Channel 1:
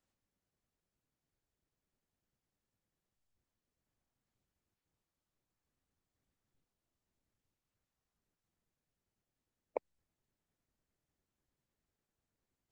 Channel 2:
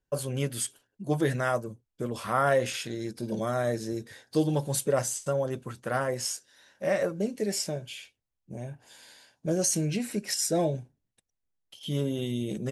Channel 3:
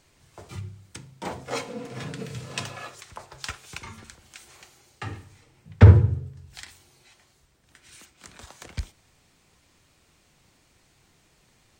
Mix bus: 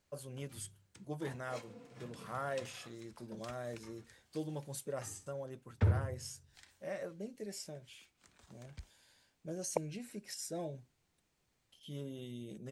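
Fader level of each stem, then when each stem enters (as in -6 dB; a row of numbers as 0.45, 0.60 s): +2.5, -15.0, -18.5 dB; 0.00, 0.00, 0.00 s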